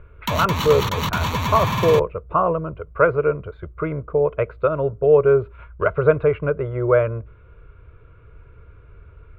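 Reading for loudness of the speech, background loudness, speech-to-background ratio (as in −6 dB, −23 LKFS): −20.5 LKFS, −23.5 LKFS, 3.0 dB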